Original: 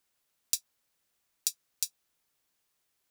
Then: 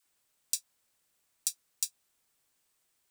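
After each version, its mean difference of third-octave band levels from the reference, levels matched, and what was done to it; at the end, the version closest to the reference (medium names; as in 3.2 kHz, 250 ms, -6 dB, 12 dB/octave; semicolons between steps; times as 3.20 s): 1.5 dB: peaking EQ 8.3 kHz +5.5 dB 0.31 oct; peak limiter -9.5 dBFS, peak gain reduction 6 dB; phase dispersion lows, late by 67 ms, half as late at 590 Hz; trim +1.5 dB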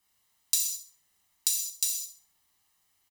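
5.0 dB: comb 1 ms, depth 58%; on a send: feedback echo behind a high-pass 66 ms, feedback 32%, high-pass 3.8 kHz, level -9.5 dB; on the sum: gated-style reverb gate 240 ms falling, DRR -3 dB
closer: first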